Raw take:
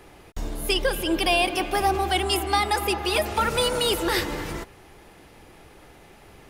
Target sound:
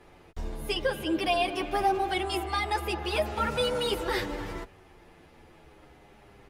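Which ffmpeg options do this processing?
ffmpeg -i in.wav -filter_complex "[0:a]aemphasis=mode=reproduction:type=cd,asplit=2[link_01][link_02];[link_02]adelay=8.7,afreqshift=-0.4[link_03];[link_01][link_03]amix=inputs=2:normalize=1,volume=-2dB" out.wav

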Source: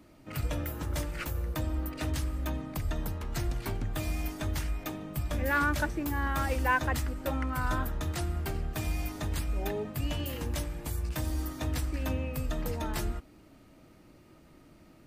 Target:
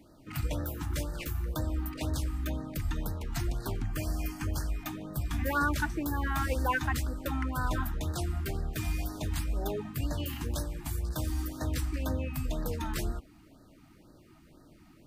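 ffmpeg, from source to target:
ffmpeg -i in.wav -filter_complex "[0:a]asettb=1/sr,asplit=3[link_01][link_02][link_03];[link_01]atrim=end=3.854[link_04];[link_02]atrim=start=3.85:end=4.69,asetpts=PTS-STARTPTS,afade=type=in:duration=0.004:curve=qsin,afade=type=out:start_time=0.836:duration=0.004:curve=qsin,asuperstop=centerf=3700:order=4:qfactor=4.3[link_05];[link_03]atrim=start=4.686[link_06];[link_04][link_05]acrossfade=duration=0.004:curve1=hsin:curve2=qsin[link_07];[link_07][link_06]acrossfade=duration=0.004:curve1=qsin:curve2=hsin,afftfilt=real='re*(1-between(b*sr/1024,450*pow(2700/450,0.5+0.5*sin(2*PI*2*pts/sr))/1.41,450*pow(2700/450,0.5+0.5*sin(2*PI*2*pts/sr))*1.41))':imag='im*(1-between(b*sr/1024,450*pow(2700/450,0.5+0.5*sin(2*PI*2*pts/sr))/1.41,450*pow(2700/450,0.5+0.5*sin(2*PI*2*pts/sr))*1.41))':win_size=1024:overlap=0.75" out.wav

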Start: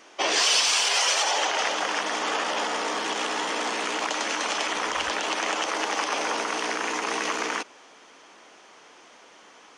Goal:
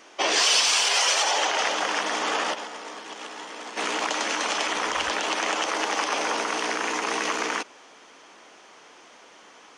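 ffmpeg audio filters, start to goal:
ffmpeg -i in.wav -filter_complex "[0:a]asplit=3[link_01][link_02][link_03];[link_01]afade=type=out:start_time=2.53:duration=0.02[link_04];[link_02]agate=range=-33dB:threshold=-19dB:ratio=3:detection=peak,afade=type=in:start_time=2.53:duration=0.02,afade=type=out:start_time=3.76:duration=0.02[link_05];[link_03]afade=type=in:start_time=3.76:duration=0.02[link_06];[link_04][link_05][link_06]amix=inputs=3:normalize=0,volume=1dB" out.wav

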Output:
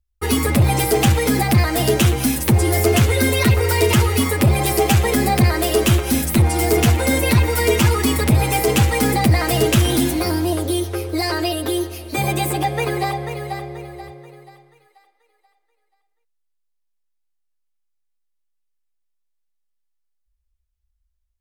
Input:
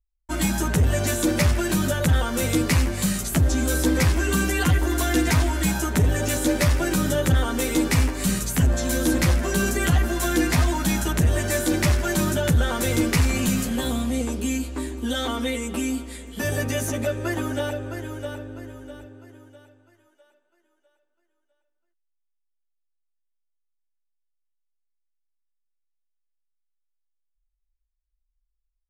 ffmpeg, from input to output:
ffmpeg -i in.wav -af "asetrate=59535,aresample=44100,volume=5dB" out.wav

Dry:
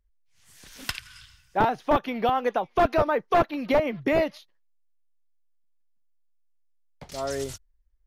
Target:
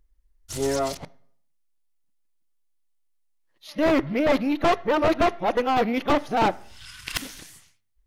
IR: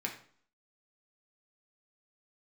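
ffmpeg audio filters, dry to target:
-filter_complex "[0:a]areverse,equalizer=frequency=315:width_type=o:width=0.33:gain=5,equalizer=frequency=1600:width_type=o:width=0.33:gain=-3,equalizer=frequency=10000:width_type=o:width=0.33:gain=3,aeval=exprs='(tanh(15.8*val(0)+0.45)-tanh(0.45))/15.8':channel_layout=same,asplit=2[link_01][link_02];[1:a]atrim=start_sample=2205,asetrate=36603,aresample=44100[link_03];[link_02][link_03]afir=irnorm=-1:irlink=0,volume=-16dB[link_04];[link_01][link_04]amix=inputs=2:normalize=0,volume=6dB"

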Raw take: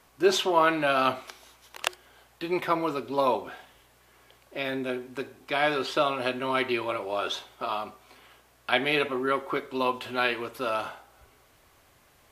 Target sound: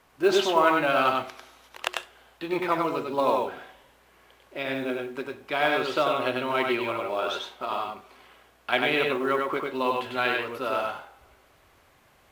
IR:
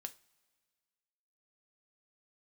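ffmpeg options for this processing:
-filter_complex "[0:a]bass=frequency=250:gain=-2,treble=frequency=4000:gain=-6,acrusher=bits=8:mode=log:mix=0:aa=0.000001,asplit=2[link_01][link_02];[1:a]atrim=start_sample=2205,adelay=97[link_03];[link_02][link_03]afir=irnorm=-1:irlink=0,volume=1.5dB[link_04];[link_01][link_04]amix=inputs=2:normalize=0"

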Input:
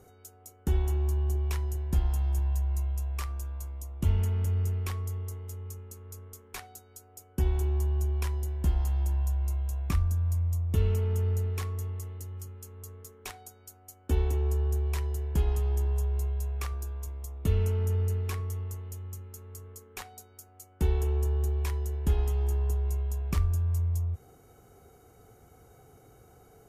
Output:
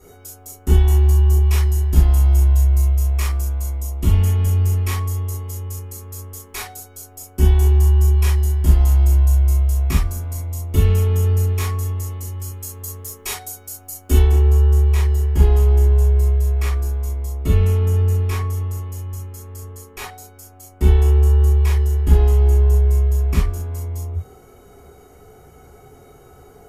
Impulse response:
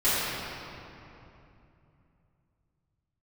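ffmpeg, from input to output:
-filter_complex "[0:a]asetnsamples=nb_out_samples=441:pad=0,asendcmd='12.44 highshelf g 9.5;14.2 highshelf g -2',highshelf=frequency=3900:gain=4.5[link_01];[1:a]atrim=start_sample=2205,atrim=end_sample=3528[link_02];[link_01][link_02]afir=irnorm=-1:irlink=0"

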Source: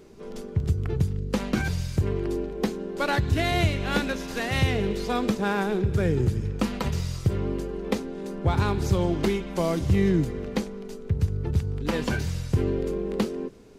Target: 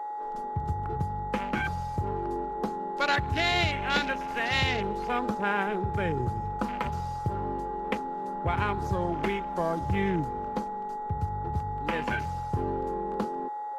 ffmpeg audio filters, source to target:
ffmpeg -i in.wav -af "aeval=exprs='val(0)+0.0282*sin(2*PI*840*n/s)':channel_layout=same,tiltshelf=frequency=750:gain=-6,afwtdn=0.0224,volume=-2dB" out.wav

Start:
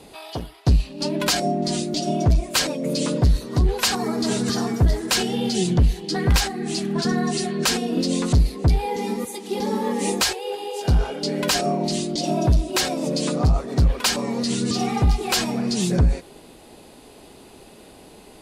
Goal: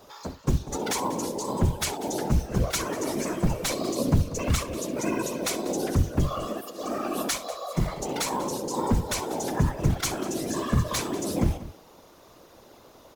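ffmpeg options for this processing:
ffmpeg -i in.wav -af "highshelf=frequency=6700:gain=-5,acrusher=bits=6:mode=log:mix=0:aa=0.000001,asetrate=61740,aresample=44100,afftfilt=real='hypot(re,im)*cos(2*PI*random(0))':imag='hypot(re,im)*sin(2*PI*random(1))':win_size=512:overlap=0.75,aecho=1:1:66|192:0.158|0.15" out.wav

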